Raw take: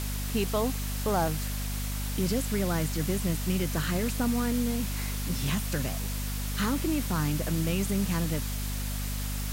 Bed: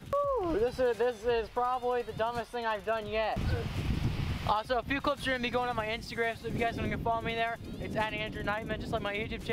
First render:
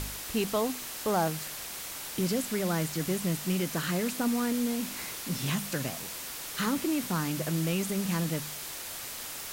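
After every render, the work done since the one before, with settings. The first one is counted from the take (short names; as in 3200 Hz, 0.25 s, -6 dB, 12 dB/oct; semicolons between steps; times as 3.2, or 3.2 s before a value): de-hum 50 Hz, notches 5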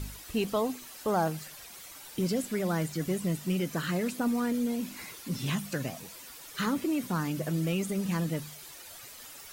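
denoiser 11 dB, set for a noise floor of -40 dBFS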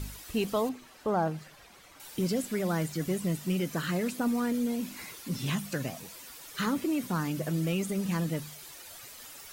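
0.69–2 LPF 1900 Hz 6 dB/oct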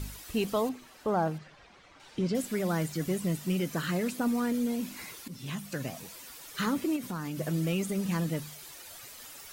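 1.38–2.35 air absorption 120 m; 5.28–6 fade in, from -12 dB; 6.96–7.39 compressor 3:1, threshold -33 dBFS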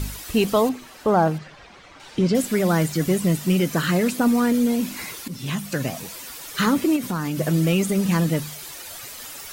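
gain +10 dB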